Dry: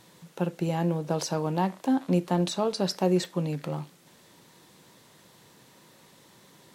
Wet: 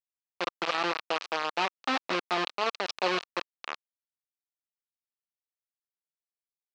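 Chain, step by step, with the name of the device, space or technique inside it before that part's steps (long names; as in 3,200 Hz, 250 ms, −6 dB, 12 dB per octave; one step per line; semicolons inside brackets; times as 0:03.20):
hand-held game console (bit reduction 4 bits; loudspeaker in its box 500–5,000 Hz, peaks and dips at 1,200 Hz +6 dB, 2,600 Hz +5 dB, 4,200 Hz +3 dB)
level −1.5 dB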